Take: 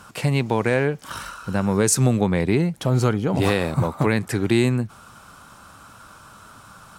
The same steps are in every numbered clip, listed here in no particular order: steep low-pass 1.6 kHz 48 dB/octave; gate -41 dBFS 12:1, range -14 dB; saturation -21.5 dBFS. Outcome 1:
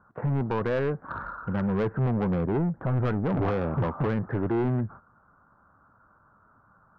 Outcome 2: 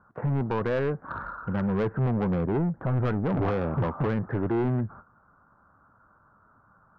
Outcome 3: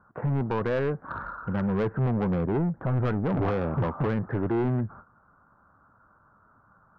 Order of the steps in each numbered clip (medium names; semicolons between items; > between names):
steep low-pass > saturation > gate; steep low-pass > gate > saturation; gate > steep low-pass > saturation